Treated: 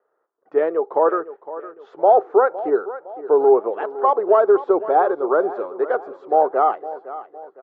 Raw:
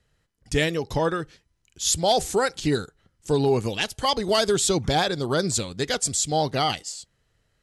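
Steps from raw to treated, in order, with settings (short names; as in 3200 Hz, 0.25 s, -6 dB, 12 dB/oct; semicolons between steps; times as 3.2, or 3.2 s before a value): elliptic band-pass 380–1300 Hz, stop band 80 dB; on a send: feedback echo 0.51 s, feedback 43%, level -15 dB; on the sum: gain +8.5 dB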